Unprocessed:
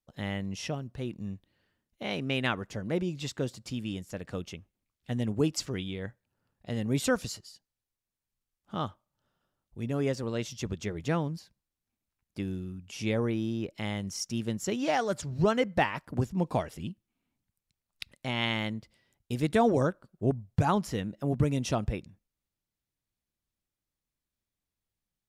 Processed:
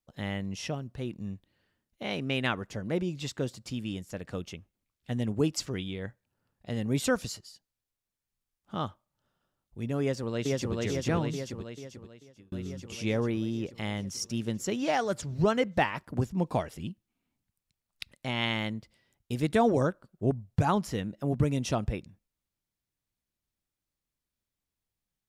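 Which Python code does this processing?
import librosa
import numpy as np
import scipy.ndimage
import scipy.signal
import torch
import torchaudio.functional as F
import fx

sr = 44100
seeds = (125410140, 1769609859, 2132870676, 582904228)

y = fx.echo_throw(x, sr, start_s=10.01, length_s=0.74, ms=440, feedback_pct=70, wet_db=-0.5)
y = fx.edit(y, sr, fx.fade_out_span(start_s=11.28, length_s=1.24), tone=tone)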